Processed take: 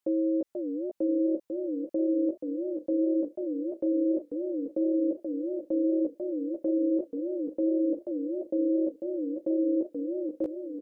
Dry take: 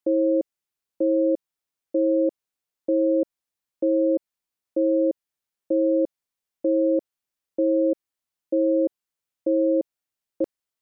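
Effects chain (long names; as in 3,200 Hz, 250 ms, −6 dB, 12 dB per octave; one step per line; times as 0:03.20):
double-tracking delay 16 ms −5 dB
brickwall limiter −21 dBFS, peak gain reduction 7 dB
feedback echo with a swinging delay time 488 ms, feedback 54%, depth 218 cents, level −6 dB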